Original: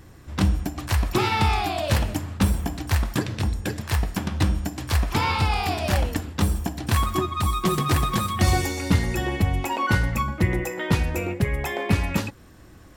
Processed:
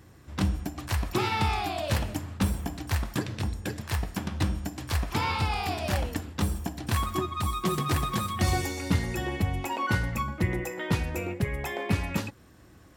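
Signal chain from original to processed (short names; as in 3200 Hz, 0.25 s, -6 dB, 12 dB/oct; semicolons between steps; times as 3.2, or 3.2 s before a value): HPF 56 Hz; gain -5 dB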